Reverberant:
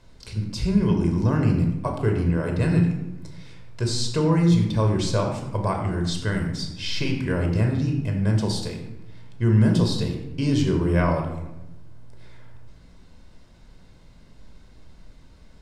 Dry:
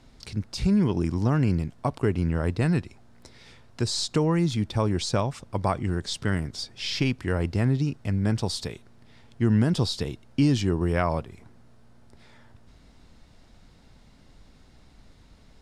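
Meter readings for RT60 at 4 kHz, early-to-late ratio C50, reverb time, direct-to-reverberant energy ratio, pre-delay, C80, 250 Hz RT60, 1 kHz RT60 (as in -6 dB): 0.60 s, 5.5 dB, 0.90 s, 2.0 dB, 18 ms, 7.5 dB, 1.4 s, 0.85 s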